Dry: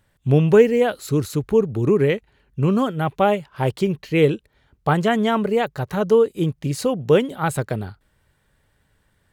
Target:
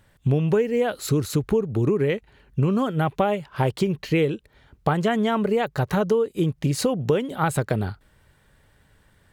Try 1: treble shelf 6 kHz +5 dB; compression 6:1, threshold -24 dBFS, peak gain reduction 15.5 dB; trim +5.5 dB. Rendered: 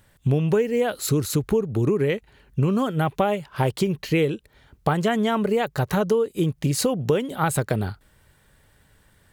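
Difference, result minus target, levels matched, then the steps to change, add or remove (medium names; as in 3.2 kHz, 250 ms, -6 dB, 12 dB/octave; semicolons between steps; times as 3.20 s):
8 kHz band +4.5 dB
change: treble shelf 6 kHz -2 dB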